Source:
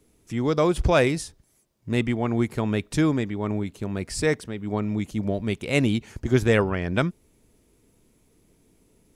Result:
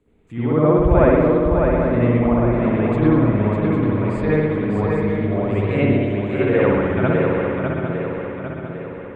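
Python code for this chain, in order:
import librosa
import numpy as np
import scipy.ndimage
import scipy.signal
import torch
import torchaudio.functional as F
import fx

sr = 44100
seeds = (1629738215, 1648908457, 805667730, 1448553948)

y = fx.steep_highpass(x, sr, hz=350.0, slope=48, at=(5.87, 6.62))
y = fx.env_lowpass_down(y, sr, base_hz=1500.0, full_db=-18.0)
y = scipy.signal.lfilter(np.full(8, 1.0 / 8), 1.0, y)
y = fx.echo_swing(y, sr, ms=802, ratio=3, feedback_pct=48, wet_db=-4.5)
y = fx.rev_spring(y, sr, rt60_s=1.3, pass_ms=(59,), chirp_ms=50, drr_db=-9.0)
y = y * 10.0 ** (-3.5 / 20.0)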